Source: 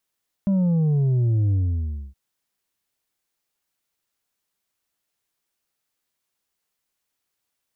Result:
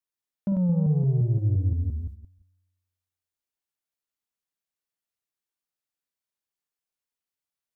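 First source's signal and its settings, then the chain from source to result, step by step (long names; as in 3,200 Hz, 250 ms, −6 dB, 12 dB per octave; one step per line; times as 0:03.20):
bass drop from 200 Hz, over 1.67 s, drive 4.5 dB, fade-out 0.62 s, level −17.5 dB
delay that plays each chunk backwards 173 ms, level −4 dB
noise gate −33 dBFS, range −10 dB
tuned comb filter 91 Hz, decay 1.2 s, harmonics all, mix 40%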